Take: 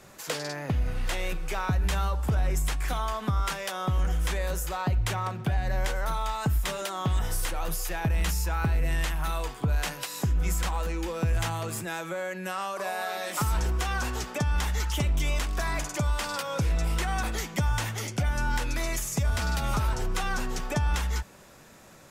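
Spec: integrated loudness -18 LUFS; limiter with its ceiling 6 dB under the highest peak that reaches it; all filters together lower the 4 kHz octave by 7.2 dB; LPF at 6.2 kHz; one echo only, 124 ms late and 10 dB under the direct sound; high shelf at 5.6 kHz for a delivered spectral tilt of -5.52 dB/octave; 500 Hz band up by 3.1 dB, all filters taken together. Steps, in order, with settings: low-pass 6.2 kHz; peaking EQ 500 Hz +4 dB; peaking EQ 4 kHz -5.5 dB; treble shelf 5.6 kHz -9 dB; peak limiter -22.5 dBFS; delay 124 ms -10 dB; trim +13.5 dB

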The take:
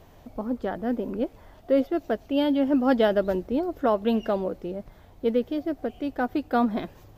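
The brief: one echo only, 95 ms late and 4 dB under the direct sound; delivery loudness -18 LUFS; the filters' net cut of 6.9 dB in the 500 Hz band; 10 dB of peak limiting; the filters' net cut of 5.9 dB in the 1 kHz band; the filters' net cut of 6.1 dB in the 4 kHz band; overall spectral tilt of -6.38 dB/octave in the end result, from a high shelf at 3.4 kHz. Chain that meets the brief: peaking EQ 500 Hz -7 dB; peaking EQ 1 kHz -4.5 dB; treble shelf 3.4 kHz -5 dB; peaking EQ 4 kHz -5 dB; peak limiter -23.5 dBFS; delay 95 ms -4 dB; trim +14 dB

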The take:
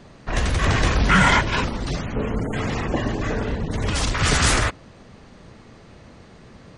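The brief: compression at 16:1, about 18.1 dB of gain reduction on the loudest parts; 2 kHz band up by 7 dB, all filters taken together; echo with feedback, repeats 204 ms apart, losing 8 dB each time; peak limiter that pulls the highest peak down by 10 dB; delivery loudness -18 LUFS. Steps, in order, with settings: peaking EQ 2 kHz +8.5 dB; compression 16:1, threshold -26 dBFS; peak limiter -25 dBFS; feedback delay 204 ms, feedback 40%, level -8 dB; trim +16.5 dB

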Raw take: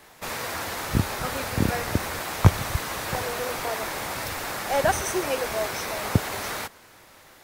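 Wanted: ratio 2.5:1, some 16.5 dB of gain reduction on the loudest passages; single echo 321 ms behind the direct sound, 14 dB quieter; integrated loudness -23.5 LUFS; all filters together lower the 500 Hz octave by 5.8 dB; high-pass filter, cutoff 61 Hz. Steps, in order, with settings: high-pass 61 Hz; peaking EQ 500 Hz -7.5 dB; compression 2.5:1, threshold -36 dBFS; delay 321 ms -14 dB; trim +12 dB

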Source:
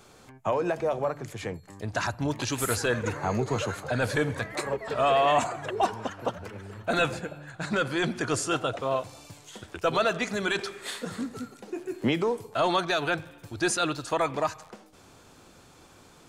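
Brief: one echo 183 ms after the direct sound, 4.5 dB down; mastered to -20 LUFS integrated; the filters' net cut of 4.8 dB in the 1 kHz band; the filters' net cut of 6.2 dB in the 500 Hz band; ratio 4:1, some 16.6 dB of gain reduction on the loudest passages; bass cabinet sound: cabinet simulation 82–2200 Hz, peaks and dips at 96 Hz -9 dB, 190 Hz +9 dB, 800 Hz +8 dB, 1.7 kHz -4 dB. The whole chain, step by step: peaking EQ 500 Hz -7 dB; peaking EQ 1 kHz -9 dB; compression 4:1, threshold -45 dBFS; cabinet simulation 82–2200 Hz, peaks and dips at 96 Hz -9 dB, 190 Hz +9 dB, 800 Hz +8 dB, 1.7 kHz -4 dB; delay 183 ms -4.5 dB; trim +25 dB

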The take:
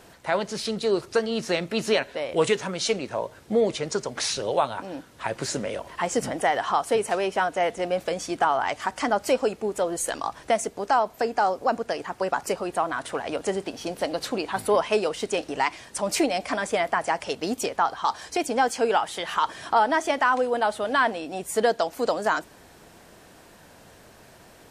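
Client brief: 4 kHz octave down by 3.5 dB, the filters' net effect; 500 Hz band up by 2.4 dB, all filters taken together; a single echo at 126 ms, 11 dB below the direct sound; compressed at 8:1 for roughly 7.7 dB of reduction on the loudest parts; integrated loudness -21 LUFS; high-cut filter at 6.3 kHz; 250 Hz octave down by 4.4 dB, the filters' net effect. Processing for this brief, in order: low-pass 6.3 kHz; peaking EQ 250 Hz -8.5 dB; peaking EQ 500 Hz +5 dB; peaking EQ 4 kHz -4 dB; compression 8:1, threshold -22 dBFS; delay 126 ms -11 dB; trim +7.5 dB

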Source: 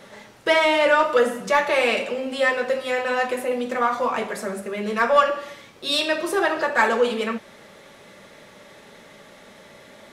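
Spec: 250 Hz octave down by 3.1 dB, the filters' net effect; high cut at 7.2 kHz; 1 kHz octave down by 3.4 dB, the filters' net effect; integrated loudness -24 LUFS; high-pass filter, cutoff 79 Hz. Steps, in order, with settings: high-pass 79 Hz; low-pass 7.2 kHz; peaking EQ 250 Hz -3.5 dB; peaking EQ 1 kHz -4 dB; trim -1 dB

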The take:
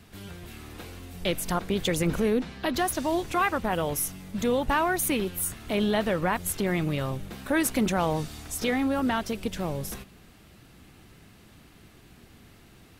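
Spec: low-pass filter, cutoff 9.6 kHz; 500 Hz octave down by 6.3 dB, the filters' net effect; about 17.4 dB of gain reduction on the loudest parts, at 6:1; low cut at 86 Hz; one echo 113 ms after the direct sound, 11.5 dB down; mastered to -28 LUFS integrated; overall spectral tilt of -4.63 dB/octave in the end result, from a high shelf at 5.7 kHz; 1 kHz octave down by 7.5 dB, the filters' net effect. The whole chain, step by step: high-pass 86 Hz; low-pass 9.6 kHz; peaking EQ 500 Hz -6 dB; peaking EQ 1 kHz -7.5 dB; treble shelf 5.7 kHz -8 dB; compression 6:1, threshold -43 dBFS; delay 113 ms -11.5 dB; trim +18.5 dB

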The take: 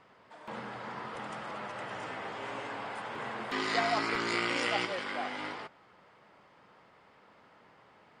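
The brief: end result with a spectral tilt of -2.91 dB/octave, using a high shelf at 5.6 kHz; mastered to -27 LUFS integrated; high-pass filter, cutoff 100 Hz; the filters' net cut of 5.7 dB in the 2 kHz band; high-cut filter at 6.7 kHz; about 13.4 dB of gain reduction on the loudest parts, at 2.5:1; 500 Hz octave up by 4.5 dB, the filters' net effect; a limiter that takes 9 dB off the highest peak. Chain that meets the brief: high-pass 100 Hz; low-pass 6.7 kHz; peaking EQ 500 Hz +6.5 dB; peaking EQ 2 kHz -6.5 dB; treble shelf 5.6 kHz -7.5 dB; compression 2.5:1, threshold -45 dBFS; trim +19.5 dB; peak limiter -17 dBFS

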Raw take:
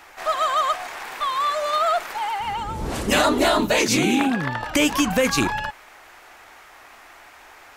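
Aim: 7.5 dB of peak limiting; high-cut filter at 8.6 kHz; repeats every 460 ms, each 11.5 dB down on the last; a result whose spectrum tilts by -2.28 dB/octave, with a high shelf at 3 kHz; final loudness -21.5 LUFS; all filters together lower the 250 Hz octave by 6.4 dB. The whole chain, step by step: low-pass 8.6 kHz; peaking EQ 250 Hz -8 dB; treble shelf 3 kHz +6.5 dB; peak limiter -13.5 dBFS; feedback delay 460 ms, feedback 27%, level -11.5 dB; trim +1.5 dB

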